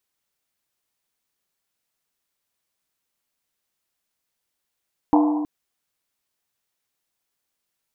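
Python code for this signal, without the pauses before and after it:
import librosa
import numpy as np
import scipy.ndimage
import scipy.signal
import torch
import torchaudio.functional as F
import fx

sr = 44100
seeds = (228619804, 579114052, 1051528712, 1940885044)

y = fx.risset_drum(sr, seeds[0], length_s=0.32, hz=300.0, decay_s=1.79, noise_hz=870.0, noise_width_hz=350.0, noise_pct=25)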